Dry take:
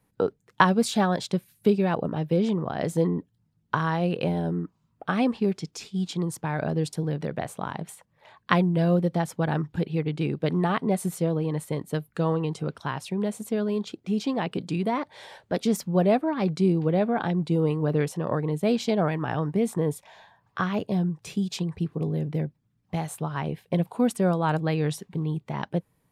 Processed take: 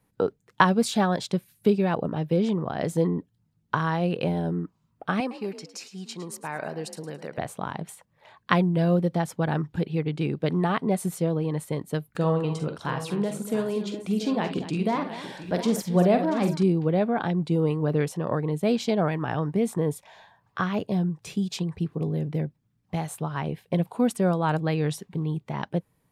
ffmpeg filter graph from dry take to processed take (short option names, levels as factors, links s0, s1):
-filter_complex "[0:a]asettb=1/sr,asplit=3[s0][s1][s2];[s0]atrim=end=5.204[s3];[s1]atrim=start=5.2:end=7.38,asetpts=PTS-STARTPTS,afade=t=in:d=0.004:c=qsin,afade=t=out:st=2.176:d=0.004:c=qsin,highpass=f=660:p=1,bandreject=f=3400:w=5.7,asplit=4[s4][s5][s6][s7];[s5]adelay=108,afreqshift=43,volume=0.211[s8];[s6]adelay=216,afreqshift=86,volume=0.0741[s9];[s7]adelay=324,afreqshift=129,volume=0.026[s10];[s4][s8][s9][s10]amix=inputs=4:normalize=0,atrim=end_sample=96138[s11];[s2]atrim=start=7.376[s12];[s3][s11]acrossfade=d=0.004:c1=hsin:c2=qsin[s13];[s13][s12]acrossfade=d=0.004:c1=qsin:c2=hsin,asettb=1/sr,asplit=3[s14][s15][s16];[s14]atrim=end=12.154[s17];[s15]atrim=start=12.15:end=16.63,asetpts=PTS-STARTPTS,afade=t=in:d=0.004:c=qsin,afade=t=out:st=4.476:d=0.004:c=qsin,acompressor=mode=upward:threshold=0.0178:ratio=2.5:attack=3.2:release=140:knee=2.83:detection=peak,aecho=1:1:45|56|70|239|685|730:0.335|0.211|0.15|0.2|0.224|0.15,atrim=end_sample=197568[s18];[s16]atrim=start=16.626[s19];[s17][s18]acrossfade=d=0.004:c1=hsin:c2=qsin[s20];[s20][s19]acrossfade=d=0.004:c1=qsin:c2=hsin"